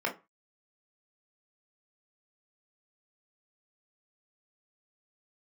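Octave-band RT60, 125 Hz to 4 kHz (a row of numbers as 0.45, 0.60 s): 0.35, 0.25, 0.25, 0.30, 0.25, 0.20 s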